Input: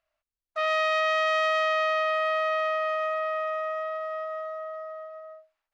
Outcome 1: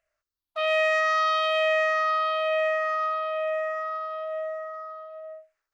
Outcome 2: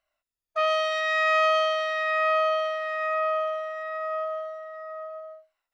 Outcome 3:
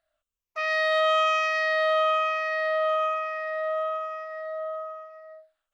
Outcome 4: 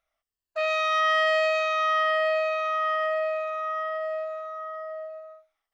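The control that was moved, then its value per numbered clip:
drifting ripple filter, ripples per octave: 0.52, 2.1, 0.8, 1.4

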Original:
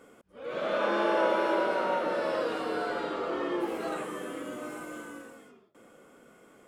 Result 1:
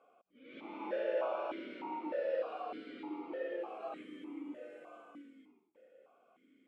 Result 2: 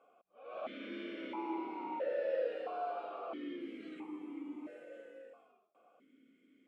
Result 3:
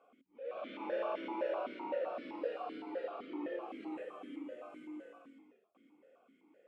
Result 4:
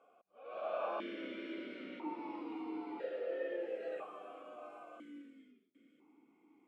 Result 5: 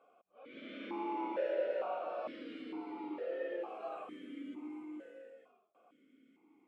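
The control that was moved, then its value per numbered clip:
stepped vowel filter, rate: 3.3 Hz, 1.5 Hz, 7.8 Hz, 1 Hz, 2.2 Hz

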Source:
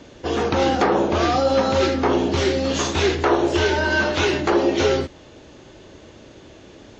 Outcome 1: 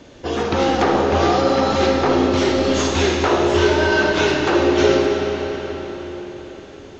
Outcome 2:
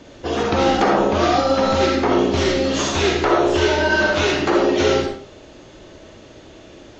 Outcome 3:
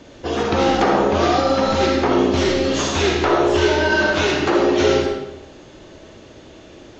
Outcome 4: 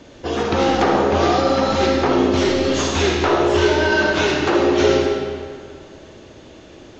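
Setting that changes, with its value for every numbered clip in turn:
algorithmic reverb, RT60: 4.9 s, 0.41 s, 0.91 s, 1.9 s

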